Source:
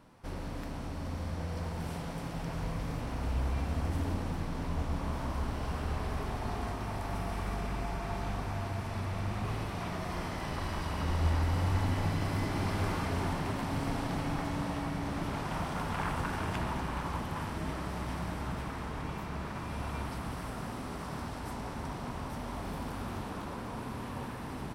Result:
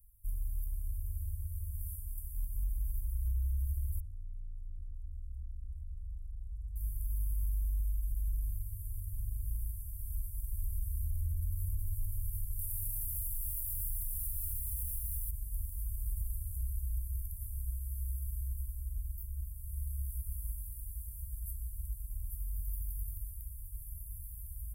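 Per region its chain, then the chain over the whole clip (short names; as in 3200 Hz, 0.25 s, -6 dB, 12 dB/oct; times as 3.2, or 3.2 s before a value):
4–6.76 air absorption 130 m + core saturation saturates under 610 Hz
12.59–15.31 high shelf 4400 Hz +11 dB + lo-fi delay 0.12 s, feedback 35%, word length 9-bit, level -4 dB
whole clip: inverse Chebyshev band-stop 200–4600 Hz, stop band 60 dB; high shelf 5600 Hz +9.5 dB; limiter -36 dBFS; gain +9 dB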